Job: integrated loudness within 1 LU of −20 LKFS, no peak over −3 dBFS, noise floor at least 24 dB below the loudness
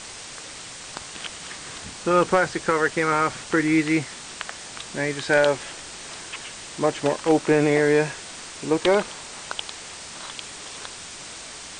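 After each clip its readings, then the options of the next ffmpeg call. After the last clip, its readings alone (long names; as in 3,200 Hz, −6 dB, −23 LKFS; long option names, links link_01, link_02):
background noise floor −39 dBFS; target noise floor −48 dBFS; integrated loudness −23.5 LKFS; sample peak −7.0 dBFS; target loudness −20.0 LKFS
→ -af "afftdn=noise_reduction=9:noise_floor=-39"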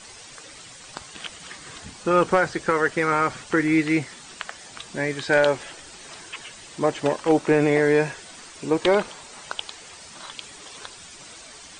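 background noise floor −44 dBFS; target noise floor −47 dBFS
→ -af "afftdn=noise_reduction=6:noise_floor=-44"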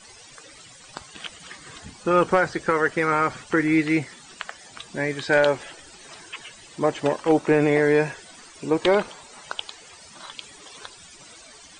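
background noise floor −47 dBFS; integrated loudness −22.5 LKFS; sample peak −6.5 dBFS; target loudness −20.0 LKFS
→ -af "volume=2.5dB"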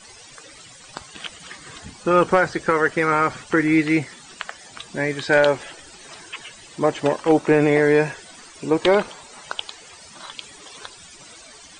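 integrated loudness −20.0 LKFS; sample peak −4.0 dBFS; background noise floor −45 dBFS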